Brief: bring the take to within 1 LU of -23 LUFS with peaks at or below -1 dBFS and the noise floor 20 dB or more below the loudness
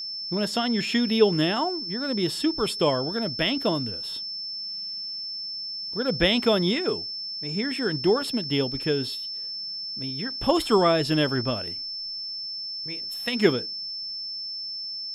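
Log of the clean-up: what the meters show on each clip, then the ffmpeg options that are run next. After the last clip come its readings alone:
steady tone 5300 Hz; tone level -31 dBFS; loudness -25.5 LUFS; peak -6.0 dBFS; loudness target -23.0 LUFS
-> -af "bandreject=f=5.3k:w=30"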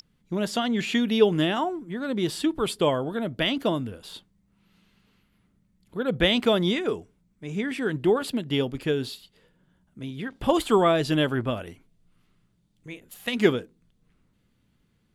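steady tone none; loudness -25.5 LUFS; peak -6.0 dBFS; loudness target -23.0 LUFS
-> -af "volume=2.5dB"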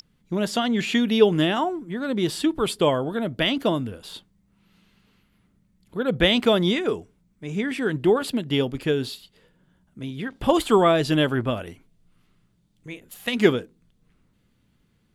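loudness -23.0 LUFS; peak -3.5 dBFS; noise floor -66 dBFS

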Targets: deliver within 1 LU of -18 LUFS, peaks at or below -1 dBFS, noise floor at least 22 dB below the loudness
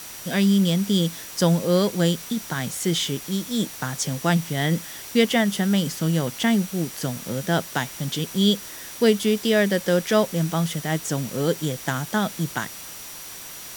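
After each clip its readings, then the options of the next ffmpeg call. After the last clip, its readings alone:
steady tone 5800 Hz; tone level -45 dBFS; noise floor -38 dBFS; noise floor target -45 dBFS; loudness -23.0 LUFS; peak -7.0 dBFS; loudness target -18.0 LUFS
-> -af "bandreject=f=5.8k:w=30"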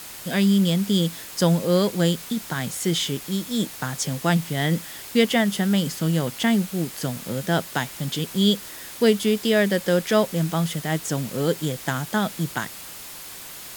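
steady tone none; noise floor -39 dBFS; noise floor target -45 dBFS
-> -af "afftdn=nr=6:nf=-39"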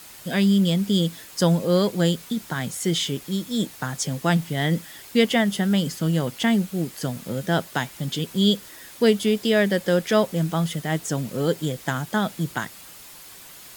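noise floor -44 dBFS; noise floor target -46 dBFS
-> -af "afftdn=nr=6:nf=-44"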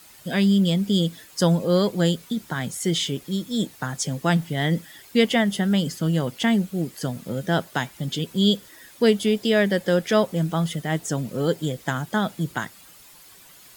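noise floor -49 dBFS; loudness -23.5 LUFS; peak -7.0 dBFS; loudness target -18.0 LUFS
-> -af "volume=5.5dB"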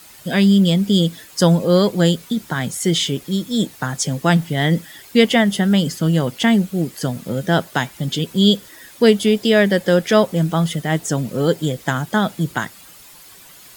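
loudness -18.0 LUFS; peak -1.5 dBFS; noise floor -43 dBFS

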